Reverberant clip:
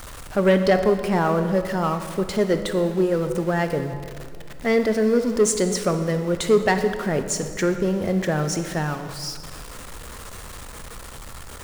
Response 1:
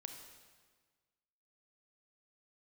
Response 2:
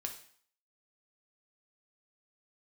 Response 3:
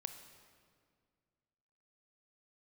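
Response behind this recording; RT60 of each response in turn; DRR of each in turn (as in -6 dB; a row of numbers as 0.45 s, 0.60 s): 3; 1.5 s, 0.55 s, 2.0 s; 4.5 dB, 2.5 dB, 7.5 dB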